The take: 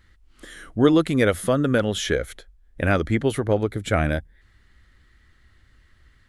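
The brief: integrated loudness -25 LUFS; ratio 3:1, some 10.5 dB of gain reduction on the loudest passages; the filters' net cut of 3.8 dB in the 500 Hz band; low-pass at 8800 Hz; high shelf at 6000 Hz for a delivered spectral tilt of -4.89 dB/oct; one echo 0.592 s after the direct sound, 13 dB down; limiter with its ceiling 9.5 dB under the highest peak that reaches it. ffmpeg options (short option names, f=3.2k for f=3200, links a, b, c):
-af "lowpass=8.8k,equalizer=f=500:t=o:g=-4.5,highshelf=f=6k:g=-6.5,acompressor=threshold=-28dB:ratio=3,alimiter=limit=-24dB:level=0:latency=1,aecho=1:1:592:0.224,volume=10.5dB"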